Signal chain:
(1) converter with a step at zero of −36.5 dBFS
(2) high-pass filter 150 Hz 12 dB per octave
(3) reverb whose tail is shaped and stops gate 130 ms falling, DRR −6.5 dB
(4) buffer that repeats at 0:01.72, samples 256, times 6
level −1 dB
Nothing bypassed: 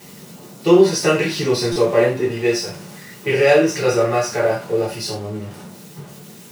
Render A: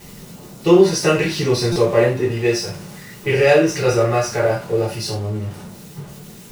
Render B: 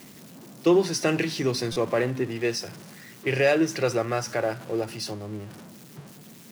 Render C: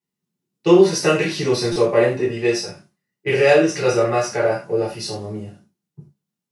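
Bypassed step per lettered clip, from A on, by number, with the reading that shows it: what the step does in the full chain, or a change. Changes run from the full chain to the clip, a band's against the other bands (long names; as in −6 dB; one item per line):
2, 125 Hz band +4.5 dB
3, 500 Hz band −2.5 dB
1, distortion level −19 dB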